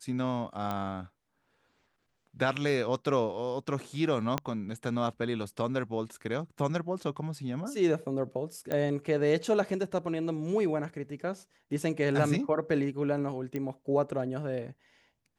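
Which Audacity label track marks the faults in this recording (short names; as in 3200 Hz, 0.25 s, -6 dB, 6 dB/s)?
0.710000	0.710000	pop -20 dBFS
4.380000	4.380000	pop -14 dBFS
8.720000	8.720000	pop -19 dBFS
13.560000	13.560000	pop -22 dBFS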